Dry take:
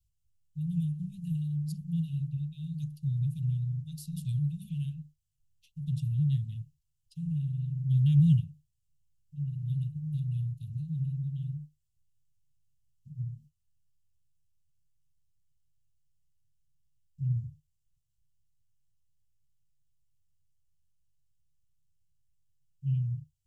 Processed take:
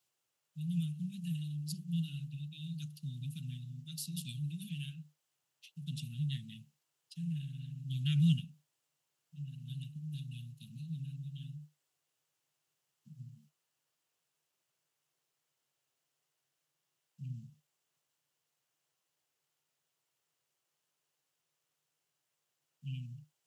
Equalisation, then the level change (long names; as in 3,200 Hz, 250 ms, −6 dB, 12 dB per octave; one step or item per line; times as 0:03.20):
high-pass filter 290 Hz 24 dB per octave
high-shelf EQ 3,100 Hz −11 dB
+15.5 dB